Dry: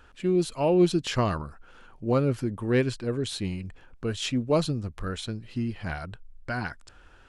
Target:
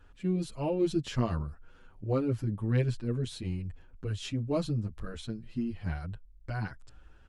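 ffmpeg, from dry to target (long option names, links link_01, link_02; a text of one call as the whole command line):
ffmpeg -i in.wav -filter_complex "[0:a]lowshelf=frequency=260:gain=11,asplit=2[link_01][link_02];[link_02]adelay=7.8,afreqshift=0.48[link_03];[link_01][link_03]amix=inputs=2:normalize=1,volume=-6.5dB" out.wav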